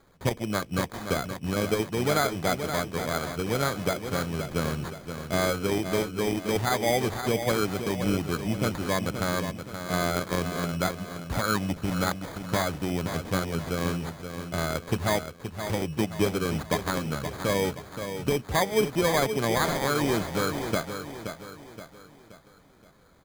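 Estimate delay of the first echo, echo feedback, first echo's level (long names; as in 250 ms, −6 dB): 524 ms, 43%, −8.5 dB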